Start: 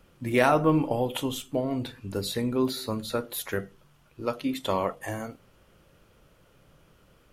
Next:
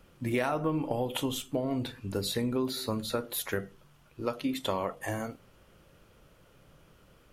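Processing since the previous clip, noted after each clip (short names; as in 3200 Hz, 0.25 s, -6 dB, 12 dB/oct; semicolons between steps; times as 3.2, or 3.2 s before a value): compressor 6:1, threshold -26 dBFS, peak gain reduction 9.5 dB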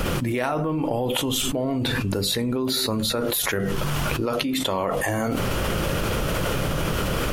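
fast leveller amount 100%; gain +2 dB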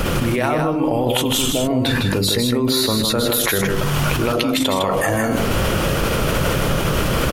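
echo 0.157 s -4.5 dB; gain +4.5 dB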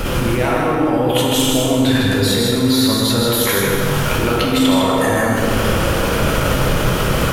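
plate-style reverb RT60 2.5 s, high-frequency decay 0.65×, DRR -2.5 dB; gain -2 dB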